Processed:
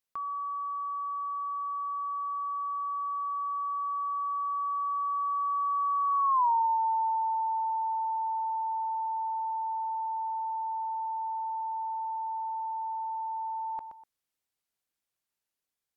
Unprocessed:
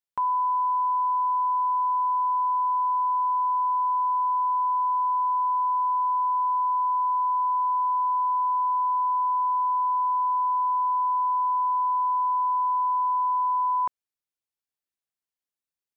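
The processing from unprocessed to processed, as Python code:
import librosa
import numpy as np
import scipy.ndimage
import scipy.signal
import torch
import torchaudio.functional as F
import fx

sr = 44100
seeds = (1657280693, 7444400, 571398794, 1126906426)

p1 = fx.doppler_pass(x, sr, speed_mps=42, closest_m=5.1, pass_at_s=6.41)
p2 = p1 + fx.echo_feedback(p1, sr, ms=123, feedback_pct=29, wet_db=-22.0, dry=0)
y = fx.env_flatten(p2, sr, amount_pct=70)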